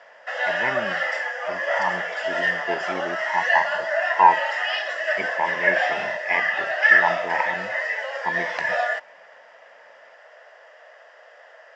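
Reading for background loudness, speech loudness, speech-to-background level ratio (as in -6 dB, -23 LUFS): -23.0 LUFS, -26.5 LUFS, -3.5 dB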